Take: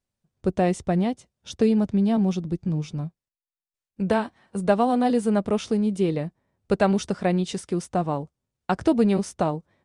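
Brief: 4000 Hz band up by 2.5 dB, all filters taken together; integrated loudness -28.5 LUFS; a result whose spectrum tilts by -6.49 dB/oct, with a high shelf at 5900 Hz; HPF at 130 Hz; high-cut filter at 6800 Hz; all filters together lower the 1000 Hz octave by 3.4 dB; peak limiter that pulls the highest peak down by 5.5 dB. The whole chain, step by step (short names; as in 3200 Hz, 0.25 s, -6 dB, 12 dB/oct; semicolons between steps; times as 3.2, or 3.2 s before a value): HPF 130 Hz; LPF 6800 Hz; bell 1000 Hz -5.5 dB; bell 4000 Hz +5 dB; high shelf 5900 Hz -3 dB; gain -2 dB; limiter -17 dBFS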